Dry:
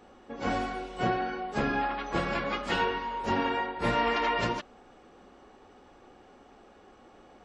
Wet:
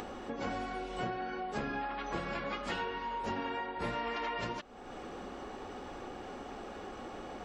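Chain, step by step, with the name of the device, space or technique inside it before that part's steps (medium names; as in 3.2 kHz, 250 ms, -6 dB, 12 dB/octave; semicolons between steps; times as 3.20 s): upward and downward compression (upward compressor, threshold -33 dBFS; compression 4:1, threshold -35 dBFS, peak gain reduction 10.5 dB)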